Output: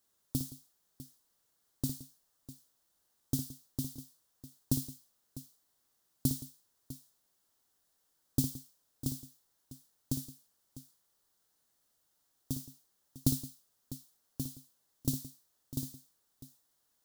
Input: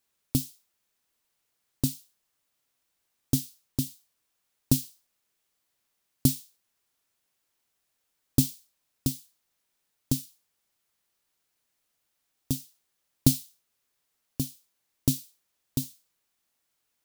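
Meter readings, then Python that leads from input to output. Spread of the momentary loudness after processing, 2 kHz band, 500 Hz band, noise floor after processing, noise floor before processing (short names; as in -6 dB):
22 LU, under -10 dB, -8.0 dB, -77 dBFS, -78 dBFS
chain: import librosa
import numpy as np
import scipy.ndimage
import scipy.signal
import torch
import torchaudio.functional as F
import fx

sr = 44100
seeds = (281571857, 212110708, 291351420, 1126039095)

y = fx.law_mismatch(x, sr, coded='mu')
y = fx.peak_eq(y, sr, hz=2400.0, db=-11.5, octaves=0.63)
y = fx.echo_multitap(y, sr, ms=(58, 170, 651), db=(-9.0, -17.5, -15.5))
y = y * 10.0 ** (-8.5 / 20.0)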